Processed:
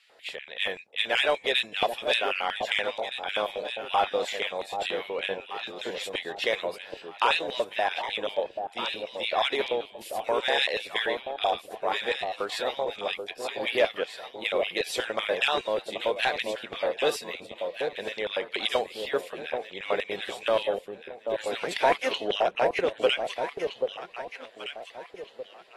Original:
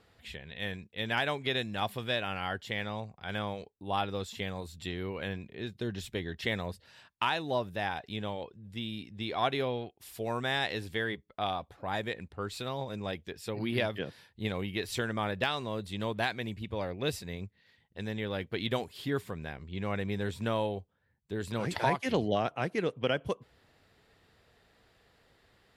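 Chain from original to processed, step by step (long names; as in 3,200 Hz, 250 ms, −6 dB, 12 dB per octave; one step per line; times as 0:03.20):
auto-filter high-pass square 5.2 Hz 530–2,500 Hz
in parallel at −4.5 dB: hard clipping −24 dBFS, distortion −11 dB
on the sum: delay that swaps between a low-pass and a high-pass 784 ms, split 840 Hz, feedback 53%, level −4.5 dB
AAC 32 kbit/s 44,100 Hz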